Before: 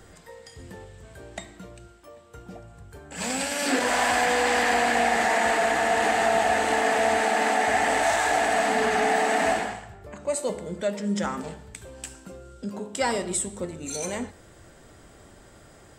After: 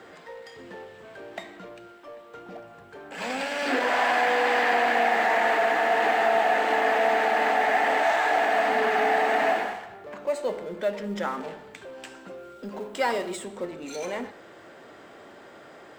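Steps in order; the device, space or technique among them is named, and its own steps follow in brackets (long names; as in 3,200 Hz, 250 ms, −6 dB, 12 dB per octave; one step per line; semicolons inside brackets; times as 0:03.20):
phone line with mismatched companding (band-pass filter 310–3,200 Hz; mu-law and A-law mismatch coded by mu)
0:12.37–0:13.35: high-shelf EQ 10,000 Hz → 5,500 Hz +6 dB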